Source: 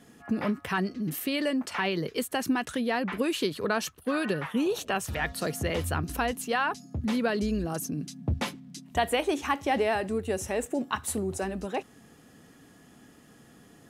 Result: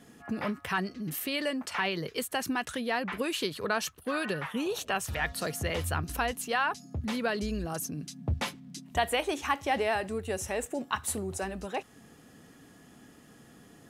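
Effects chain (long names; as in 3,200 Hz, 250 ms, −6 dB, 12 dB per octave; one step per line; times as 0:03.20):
dynamic equaliser 270 Hz, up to −6 dB, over −42 dBFS, Q 0.71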